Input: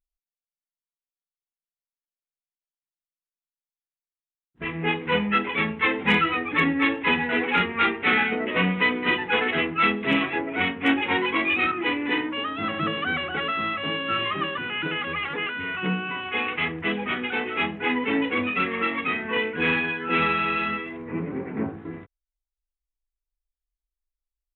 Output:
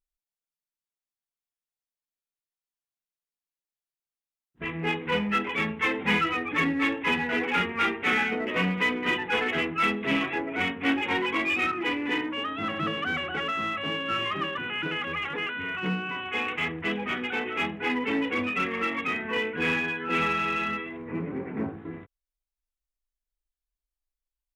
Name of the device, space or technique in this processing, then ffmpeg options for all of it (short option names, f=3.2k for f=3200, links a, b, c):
parallel distortion: -filter_complex "[0:a]asplit=2[a][b];[b]asoftclip=type=hard:threshold=-23.5dB,volume=-7dB[c];[a][c]amix=inputs=2:normalize=0,volume=-5.5dB"